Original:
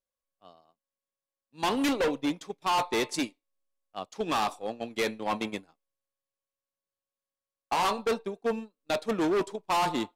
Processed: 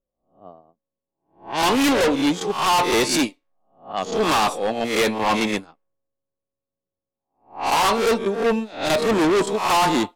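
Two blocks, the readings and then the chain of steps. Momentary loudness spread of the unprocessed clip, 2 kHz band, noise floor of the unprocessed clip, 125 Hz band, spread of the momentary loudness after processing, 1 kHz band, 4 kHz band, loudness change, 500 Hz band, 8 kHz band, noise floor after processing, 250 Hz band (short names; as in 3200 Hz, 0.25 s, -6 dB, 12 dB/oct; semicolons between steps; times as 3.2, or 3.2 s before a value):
9 LU, +10.5 dB, under -85 dBFS, +11.0 dB, 8 LU, +9.0 dB, +11.0 dB, +9.5 dB, +9.5 dB, +13.0 dB, under -85 dBFS, +9.5 dB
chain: spectral swells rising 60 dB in 0.43 s; sine folder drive 9 dB, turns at -15.5 dBFS; low-pass opened by the level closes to 450 Hz, open at -20.5 dBFS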